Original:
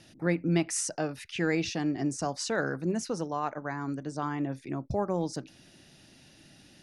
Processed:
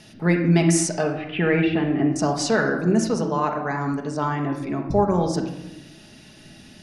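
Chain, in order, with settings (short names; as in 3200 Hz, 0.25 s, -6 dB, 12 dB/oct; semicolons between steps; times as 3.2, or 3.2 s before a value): 1.03–2.16 steep low-pass 3100 Hz 36 dB/oct; reverb RT60 1.0 s, pre-delay 5 ms, DRR 1.5 dB; gain +7 dB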